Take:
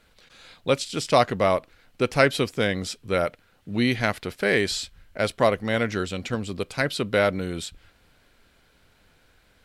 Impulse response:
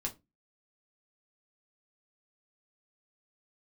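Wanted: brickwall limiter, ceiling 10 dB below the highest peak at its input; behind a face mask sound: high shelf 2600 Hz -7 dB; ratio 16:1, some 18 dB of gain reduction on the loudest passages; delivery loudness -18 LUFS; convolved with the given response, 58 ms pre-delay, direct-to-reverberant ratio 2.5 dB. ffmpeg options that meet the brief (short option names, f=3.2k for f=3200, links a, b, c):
-filter_complex "[0:a]acompressor=threshold=-31dB:ratio=16,alimiter=level_in=4.5dB:limit=-24dB:level=0:latency=1,volume=-4.5dB,asplit=2[a][b];[1:a]atrim=start_sample=2205,adelay=58[c];[b][c]afir=irnorm=-1:irlink=0,volume=-3.5dB[d];[a][d]amix=inputs=2:normalize=0,highshelf=f=2.6k:g=-7,volume=20.5dB"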